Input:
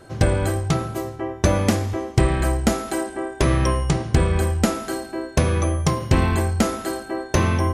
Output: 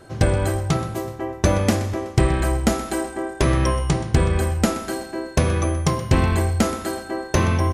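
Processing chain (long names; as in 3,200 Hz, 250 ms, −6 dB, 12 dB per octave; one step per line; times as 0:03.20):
repeating echo 125 ms, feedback 55%, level −16 dB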